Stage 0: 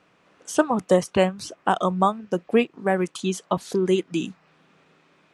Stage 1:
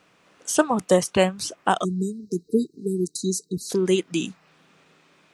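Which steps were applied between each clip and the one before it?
spectral selection erased 1.84–3.70 s, 470–3800 Hz; treble shelf 4.1 kHz +9.5 dB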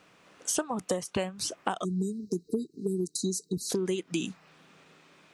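compression 16:1, threshold -26 dBFS, peak gain reduction 15.5 dB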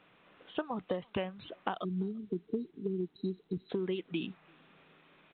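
speakerphone echo 340 ms, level -29 dB; trim -4.5 dB; A-law 64 kbps 8 kHz

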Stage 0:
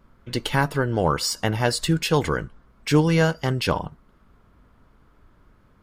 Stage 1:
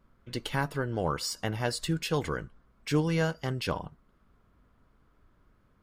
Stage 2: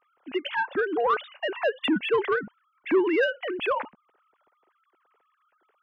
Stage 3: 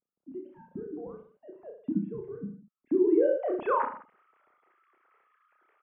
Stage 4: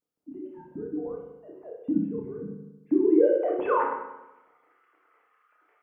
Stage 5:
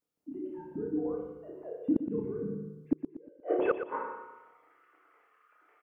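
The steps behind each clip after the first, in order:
band-stop 890 Hz, Q 23; trim -8.5 dB
formants replaced by sine waves; saturation -20.5 dBFS, distortion -18 dB; trim +6 dB
low-pass sweep 190 Hz -> 2.1 kHz, 2.65–4.11 s; peak limiter -16 dBFS, peak gain reduction 7 dB; on a send: reverse bouncing-ball echo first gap 30 ms, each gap 1.15×, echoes 5; on the sum: trim -4 dB
FDN reverb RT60 0.99 s, low-frequency decay 1.05×, high-frequency decay 0.75×, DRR 0 dB
inverted gate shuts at -15 dBFS, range -37 dB; on a send: feedback delay 118 ms, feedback 41%, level -9.5 dB

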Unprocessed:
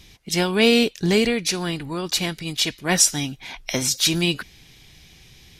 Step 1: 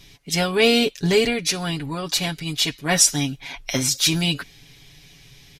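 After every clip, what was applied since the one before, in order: comb 7.1 ms, depth 71%; trim -1 dB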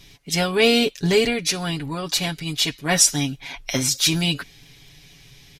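crackle 10 per s -42 dBFS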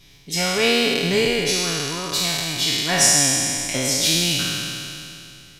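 spectral sustain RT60 2.68 s; trim -4.5 dB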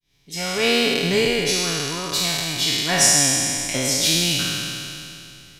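fade-in on the opening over 0.75 s

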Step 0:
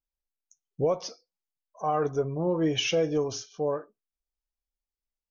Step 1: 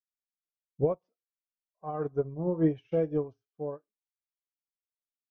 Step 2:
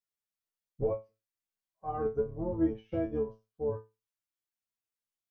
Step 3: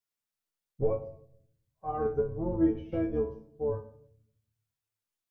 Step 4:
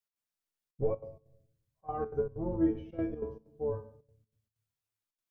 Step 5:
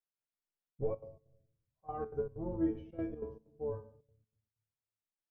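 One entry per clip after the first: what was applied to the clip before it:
low-pass 1.9 kHz 12 dB/octave; bass shelf 360 Hz +9 dB; upward expansion 2.5:1, over -41 dBFS; trim -2.5 dB
octave divider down 2 oct, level -1 dB; compression, threshold -26 dBFS, peak gain reduction 8.5 dB; feedback comb 110 Hz, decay 0.23 s, harmonics all, mix 100%; trim +8.5 dB
simulated room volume 130 m³, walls mixed, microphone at 0.32 m; trim +1.5 dB
trance gate "x.xxxxxxx.xx.x" 191 bpm -12 dB; trim -2.5 dB
tape noise reduction on one side only decoder only; trim -4.5 dB

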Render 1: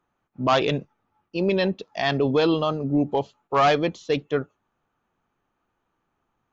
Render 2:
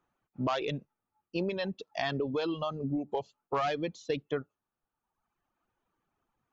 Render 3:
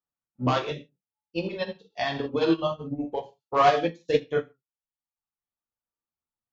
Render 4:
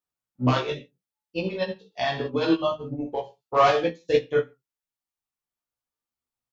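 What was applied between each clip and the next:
compression 6:1, threshold -24 dBFS, peak gain reduction 8.5 dB; reverb removal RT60 1.2 s; trim -3.5 dB
gated-style reverb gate 200 ms falling, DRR -1.5 dB; upward expansion 2.5:1, over -44 dBFS; trim +8.5 dB
doubling 16 ms -2.5 dB

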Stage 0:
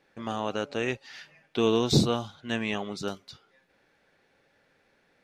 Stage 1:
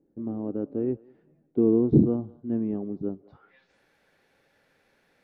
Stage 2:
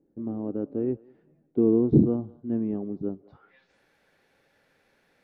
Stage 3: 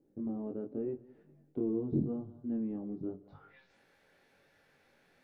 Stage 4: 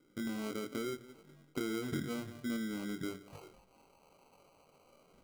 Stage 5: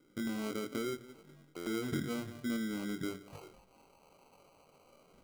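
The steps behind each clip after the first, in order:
low-pass sweep 310 Hz -> 13 kHz, 3.16–3.83 s; dynamic bell 1.1 kHz, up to +4 dB, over -37 dBFS, Q 0.72; thinning echo 198 ms, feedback 42%, high-pass 630 Hz, level -21 dB
no audible change
compression 2:1, threshold -38 dBFS, peak gain reduction 14 dB; chorus 0.86 Hz, delay 20 ms, depth 3.6 ms; on a send at -15.5 dB: reverberation RT60 0.35 s, pre-delay 5 ms; on the sum: trim +1.5 dB
compression 4:1, threshold -38 dBFS, peak gain reduction 11 dB; LFO low-pass saw down 0.39 Hz 630–1600 Hz; sample-and-hold 25×; trim +2 dB
buffer glitch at 1.56 s, samples 512, times 8; trim +1.5 dB

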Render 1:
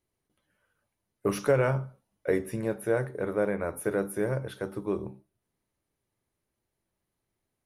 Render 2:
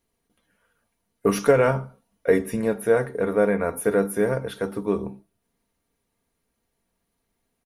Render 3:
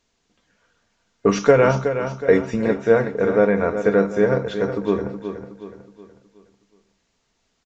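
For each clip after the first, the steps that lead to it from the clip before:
comb 4.3 ms, depth 50%; trim +6 dB
word length cut 12-bit, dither triangular; feedback delay 369 ms, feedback 42%, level -9 dB; resampled via 16 kHz; trim +3.5 dB

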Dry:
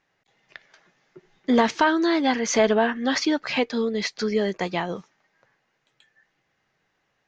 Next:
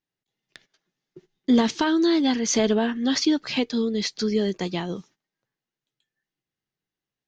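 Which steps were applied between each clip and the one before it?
gate -51 dBFS, range -16 dB; high-order bell 1.1 kHz -9 dB 2.6 oct; trim +2.5 dB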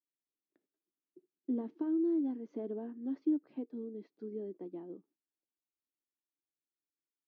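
ladder band-pass 340 Hz, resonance 60%; trim -7 dB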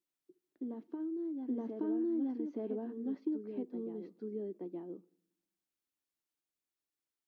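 compression, threshold -33 dBFS, peak gain reduction 7 dB; reverse echo 873 ms -4.5 dB; on a send at -23 dB: reverberation RT60 0.75 s, pre-delay 5 ms; on the sum: trim +1 dB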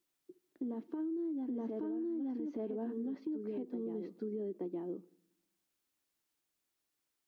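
peak limiter -34.5 dBFS, peak gain reduction 9 dB; compression 3:1, threshold -44 dBFS, peak gain reduction 5.5 dB; trim +7 dB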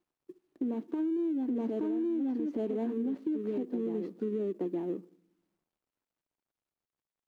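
median filter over 25 samples; trim +6.5 dB

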